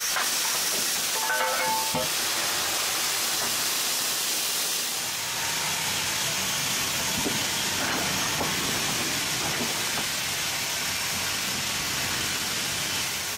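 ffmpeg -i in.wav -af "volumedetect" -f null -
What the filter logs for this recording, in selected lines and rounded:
mean_volume: -27.3 dB
max_volume: -13.1 dB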